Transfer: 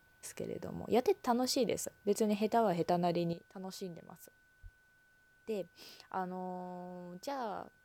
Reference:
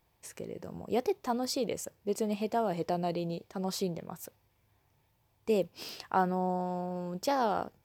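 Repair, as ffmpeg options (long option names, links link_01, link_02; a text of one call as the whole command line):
ffmpeg -i in.wav -filter_complex "[0:a]bandreject=frequency=1500:width=30,asplit=3[link_01][link_02][link_03];[link_01]afade=type=out:start_time=4.62:duration=0.02[link_04];[link_02]highpass=frequency=140:width=0.5412,highpass=frequency=140:width=1.3066,afade=type=in:start_time=4.62:duration=0.02,afade=type=out:start_time=4.74:duration=0.02[link_05];[link_03]afade=type=in:start_time=4.74:duration=0.02[link_06];[link_04][link_05][link_06]amix=inputs=3:normalize=0,agate=range=-21dB:threshold=-60dB,asetnsamples=nb_out_samples=441:pad=0,asendcmd='3.33 volume volume 10.5dB',volume=0dB" out.wav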